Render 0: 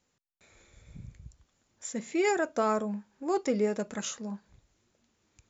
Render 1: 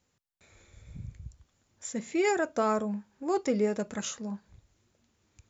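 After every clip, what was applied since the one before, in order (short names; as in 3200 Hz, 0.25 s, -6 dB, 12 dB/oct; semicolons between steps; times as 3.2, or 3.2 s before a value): bell 85 Hz +6.5 dB 1.3 oct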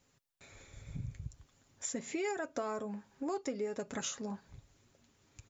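comb 7.3 ms, depth 41%; harmonic-percussive split harmonic -3 dB; compressor 4:1, threshold -40 dBFS, peak gain reduction 14 dB; gain +4 dB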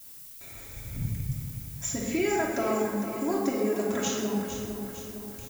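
added noise violet -53 dBFS; on a send: feedback echo 0.456 s, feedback 54%, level -9.5 dB; on the sum: shoebox room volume 1700 m³, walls mixed, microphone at 2.9 m; gain +3.5 dB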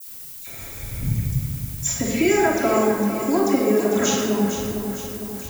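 dispersion lows, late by 65 ms, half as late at 2500 Hz; gain +8.5 dB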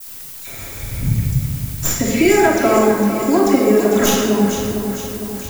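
tracing distortion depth 0.082 ms; gain +5.5 dB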